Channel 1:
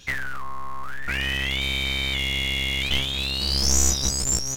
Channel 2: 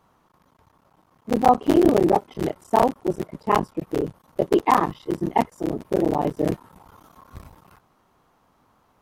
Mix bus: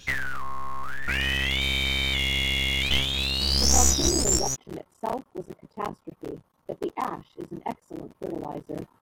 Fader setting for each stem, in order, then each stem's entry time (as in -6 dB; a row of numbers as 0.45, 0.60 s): 0.0, -12.0 dB; 0.00, 2.30 s